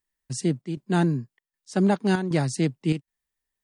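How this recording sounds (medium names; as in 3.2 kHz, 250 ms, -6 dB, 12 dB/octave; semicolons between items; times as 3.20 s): chopped level 1.3 Hz, depth 60%, duty 80%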